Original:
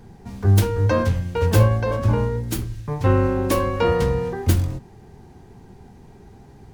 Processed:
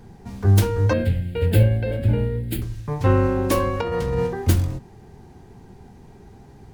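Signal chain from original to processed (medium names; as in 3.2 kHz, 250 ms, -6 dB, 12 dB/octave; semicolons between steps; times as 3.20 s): 0.93–2.62 s: static phaser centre 2.6 kHz, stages 4; 3.81–4.27 s: compressor with a negative ratio -23 dBFS, ratio -1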